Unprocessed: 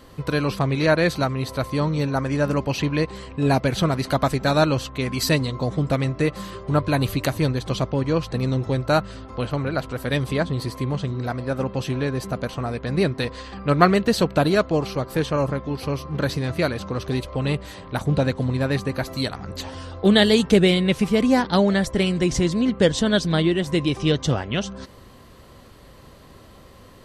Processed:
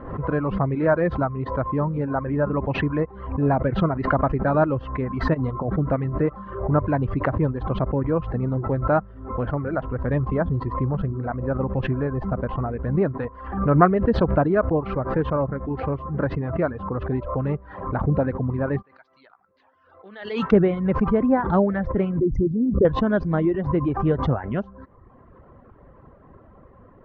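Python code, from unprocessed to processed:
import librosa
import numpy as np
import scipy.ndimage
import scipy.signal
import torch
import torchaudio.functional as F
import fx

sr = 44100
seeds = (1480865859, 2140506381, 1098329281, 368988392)

y = fx.over_compress(x, sr, threshold_db=-24.0, ratio=-0.5, at=(5.33, 5.73), fade=0.02)
y = fx.low_shelf(y, sr, hz=83.0, db=10.0, at=(9.91, 12.98))
y = fx.bandpass_q(y, sr, hz=5500.0, q=1.7, at=(18.81, 20.51), fade=0.02)
y = fx.envelope_sharpen(y, sr, power=3.0, at=(22.19, 22.85))
y = fx.dereverb_blind(y, sr, rt60_s=0.85)
y = scipy.signal.sosfilt(scipy.signal.butter(4, 1500.0, 'lowpass', fs=sr, output='sos'), y)
y = fx.pre_swell(y, sr, db_per_s=75.0)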